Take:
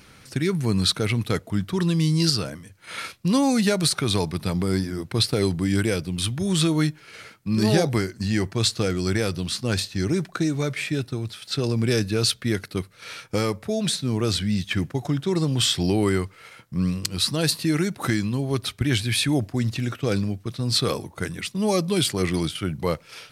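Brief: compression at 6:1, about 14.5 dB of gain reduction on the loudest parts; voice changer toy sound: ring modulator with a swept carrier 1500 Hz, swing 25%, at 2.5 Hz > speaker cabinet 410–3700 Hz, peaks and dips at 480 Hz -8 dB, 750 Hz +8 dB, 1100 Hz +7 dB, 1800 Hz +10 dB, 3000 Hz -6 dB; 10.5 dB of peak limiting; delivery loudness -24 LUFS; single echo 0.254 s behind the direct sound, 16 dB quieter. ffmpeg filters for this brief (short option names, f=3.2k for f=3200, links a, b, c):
-af "acompressor=threshold=-32dB:ratio=6,alimiter=level_in=1.5dB:limit=-24dB:level=0:latency=1,volume=-1.5dB,aecho=1:1:254:0.158,aeval=exprs='val(0)*sin(2*PI*1500*n/s+1500*0.25/2.5*sin(2*PI*2.5*n/s))':c=same,highpass=410,equalizer=f=480:t=q:w=4:g=-8,equalizer=f=750:t=q:w=4:g=8,equalizer=f=1.1k:t=q:w=4:g=7,equalizer=f=1.8k:t=q:w=4:g=10,equalizer=f=3k:t=q:w=4:g=-6,lowpass=f=3.7k:w=0.5412,lowpass=f=3.7k:w=1.3066,volume=8dB"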